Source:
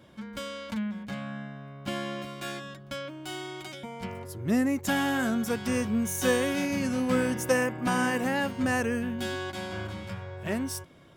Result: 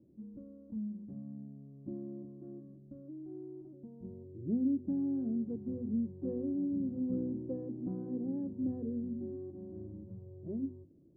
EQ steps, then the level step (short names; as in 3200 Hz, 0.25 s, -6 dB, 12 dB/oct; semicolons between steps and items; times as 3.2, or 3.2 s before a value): ladder low-pass 380 Hz, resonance 50%; air absorption 360 m; notches 50/100/150/200/250 Hz; 0.0 dB